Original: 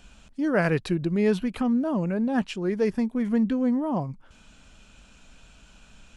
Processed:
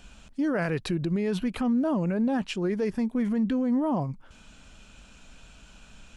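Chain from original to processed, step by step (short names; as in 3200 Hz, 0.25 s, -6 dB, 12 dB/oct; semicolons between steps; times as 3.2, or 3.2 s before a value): limiter -21 dBFS, peak gain reduction 9.5 dB; gain +1.5 dB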